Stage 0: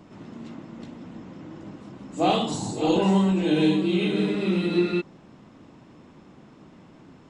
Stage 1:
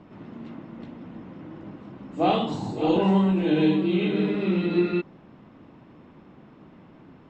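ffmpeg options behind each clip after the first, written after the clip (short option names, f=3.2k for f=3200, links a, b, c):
-af "lowpass=3k"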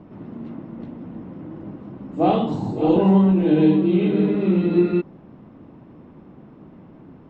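-af "tiltshelf=f=1.2k:g=6"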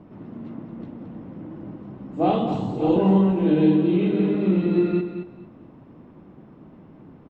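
-af "aecho=1:1:221|442|663:0.355|0.0781|0.0172,volume=-2.5dB"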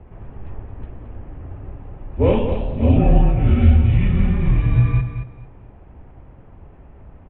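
-af "highpass=f=150:t=q:w=0.5412,highpass=f=150:t=q:w=1.307,lowpass=f=3.3k:t=q:w=0.5176,lowpass=f=3.3k:t=q:w=0.7071,lowpass=f=3.3k:t=q:w=1.932,afreqshift=-230,volume=5.5dB"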